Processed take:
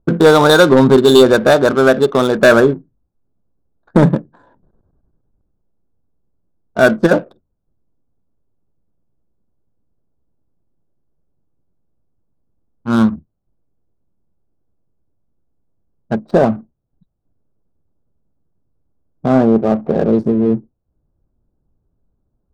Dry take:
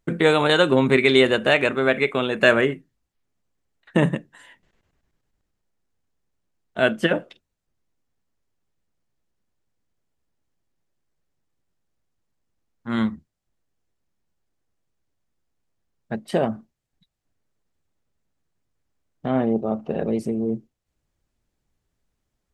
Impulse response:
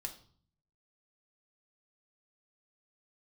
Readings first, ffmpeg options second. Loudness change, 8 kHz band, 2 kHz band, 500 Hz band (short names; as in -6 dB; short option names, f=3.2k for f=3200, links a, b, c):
+8.5 dB, n/a, +4.0 dB, +9.5 dB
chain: -af "asuperstop=centerf=2400:order=12:qfactor=1.3,adynamicsmooth=sensitivity=7:basefreq=680,aeval=exprs='0.596*sin(PI/2*1.58*val(0)/0.596)':c=same,volume=3dB"